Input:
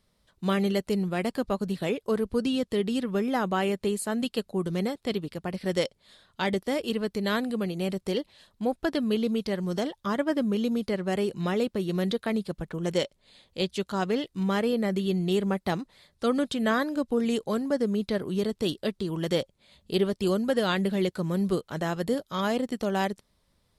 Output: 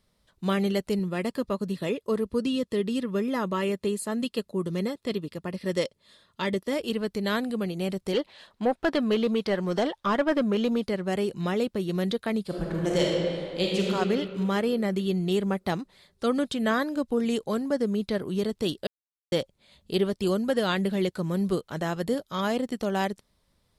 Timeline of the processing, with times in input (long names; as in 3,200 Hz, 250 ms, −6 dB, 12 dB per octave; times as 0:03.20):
0:00.99–0:06.73: notch comb filter 760 Hz
0:08.13–0:10.84: mid-hump overdrive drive 16 dB, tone 2,000 Hz, clips at −13.5 dBFS
0:12.42–0:13.92: thrown reverb, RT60 2.5 s, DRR −3.5 dB
0:18.87–0:19.32: silence